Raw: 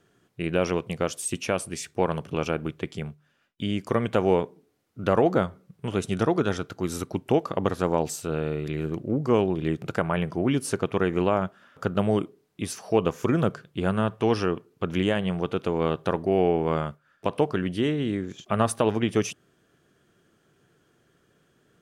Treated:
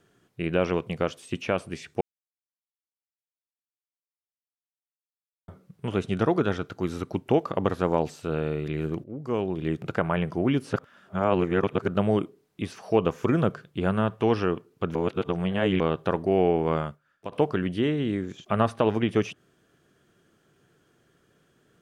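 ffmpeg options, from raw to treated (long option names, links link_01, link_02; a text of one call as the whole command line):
ffmpeg -i in.wav -filter_complex "[0:a]asplit=9[link_01][link_02][link_03][link_04][link_05][link_06][link_07][link_08][link_09];[link_01]atrim=end=2.01,asetpts=PTS-STARTPTS,afade=type=out:start_time=2.006:duration=0.004:curve=hsin[link_10];[link_02]atrim=start=2.01:end=5.48,asetpts=PTS-STARTPTS,volume=0[link_11];[link_03]atrim=start=5.48:end=9.04,asetpts=PTS-STARTPTS,afade=type=in:duration=0.004:curve=hsin,afade=type=out:start_time=3.556:duration=0.004:curve=hsin:silence=0.158489[link_12];[link_04]atrim=start=9.04:end=10.732,asetpts=PTS-STARTPTS,afade=type=in:duration=0.79:silence=0.158489[link_13];[link_05]atrim=start=10.728:end=11.882,asetpts=PTS-STARTPTS,areverse[link_14];[link_06]atrim=start=11.878:end=14.952[link_15];[link_07]atrim=start=14.948:end=15.802,asetpts=PTS-STARTPTS,areverse[link_16];[link_08]atrim=start=15.798:end=17.32,asetpts=PTS-STARTPTS,afade=type=out:start_time=0.932:duration=0.59:silence=0.266073[link_17];[link_09]atrim=start=17.32,asetpts=PTS-STARTPTS,afade=type=in:duration=0.004:curve=hsin:silence=0.266073[link_18];[link_10][link_11][link_12][link_13]concat=n=4:v=0:a=1[link_19];[link_19][link_14]acrossfade=duration=0.004:curve1=hsin:curve2=hsin[link_20];[link_20][link_15]acrossfade=duration=0.004:curve1=hsin:curve2=hsin[link_21];[link_21][link_16]acrossfade=duration=0.004:curve1=hsin:curve2=hsin[link_22];[link_17][link_18]concat=n=2:v=0:a=1[link_23];[link_22][link_23]acrossfade=duration=0.004:curve1=hsin:curve2=hsin,acrossover=split=4000[link_24][link_25];[link_25]acompressor=threshold=-55dB:ratio=4:attack=1:release=60[link_26];[link_24][link_26]amix=inputs=2:normalize=0" out.wav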